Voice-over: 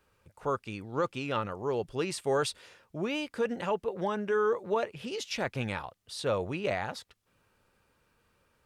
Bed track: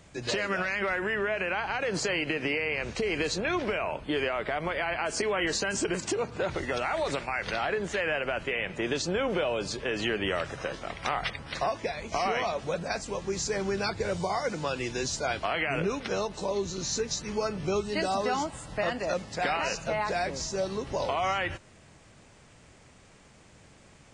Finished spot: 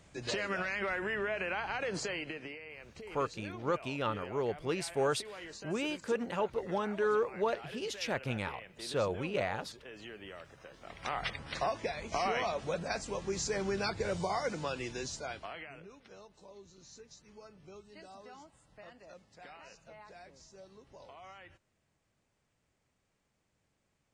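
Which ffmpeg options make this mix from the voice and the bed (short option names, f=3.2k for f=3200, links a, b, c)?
-filter_complex "[0:a]adelay=2700,volume=-2.5dB[a];[1:a]volume=9dB,afade=t=out:st=1.83:d=0.75:silence=0.223872,afade=t=in:st=10.74:d=0.56:silence=0.188365,afade=t=out:st=14.43:d=1.37:silence=0.105925[b];[a][b]amix=inputs=2:normalize=0"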